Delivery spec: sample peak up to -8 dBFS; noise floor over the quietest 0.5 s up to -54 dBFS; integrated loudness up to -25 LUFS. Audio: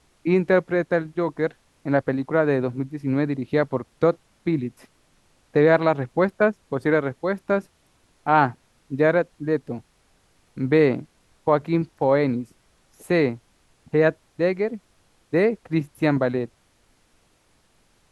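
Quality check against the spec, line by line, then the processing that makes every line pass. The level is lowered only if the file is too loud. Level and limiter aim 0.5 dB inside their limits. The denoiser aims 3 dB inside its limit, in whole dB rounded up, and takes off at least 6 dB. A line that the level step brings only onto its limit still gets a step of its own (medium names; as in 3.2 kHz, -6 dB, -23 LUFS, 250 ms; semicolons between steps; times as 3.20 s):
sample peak -4.0 dBFS: fail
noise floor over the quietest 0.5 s -62 dBFS: pass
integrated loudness -23.0 LUFS: fail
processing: trim -2.5 dB; peak limiter -8.5 dBFS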